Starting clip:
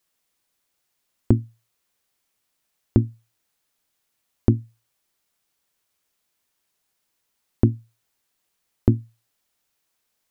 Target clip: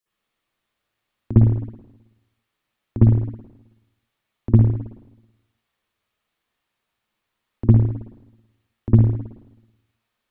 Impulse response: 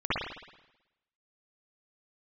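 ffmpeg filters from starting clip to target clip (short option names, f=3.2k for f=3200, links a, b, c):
-filter_complex "[0:a]acrossover=split=270|3000[a][b][c];[b]acompressor=threshold=-25dB:ratio=6[d];[a][d][c]amix=inputs=3:normalize=0[e];[1:a]atrim=start_sample=2205[f];[e][f]afir=irnorm=-1:irlink=0,volume=-9dB"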